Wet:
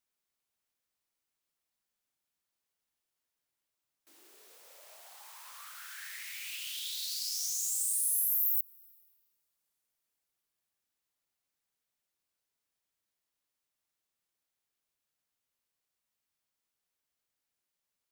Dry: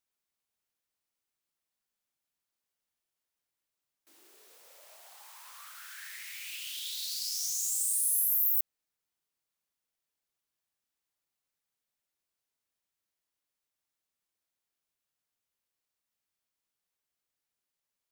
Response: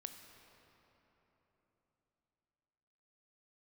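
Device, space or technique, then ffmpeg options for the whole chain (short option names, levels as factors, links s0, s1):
ducked reverb: -filter_complex "[0:a]asplit=3[s0][s1][s2];[1:a]atrim=start_sample=2205[s3];[s1][s3]afir=irnorm=-1:irlink=0[s4];[s2]apad=whole_len=798944[s5];[s4][s5]sidechaincompress=threshold=0.0126:ratio=5:attack=36:release=299,volume=0.891[s6];[s0][s6]amix=inputs=2:normalize=0,volume=0.708"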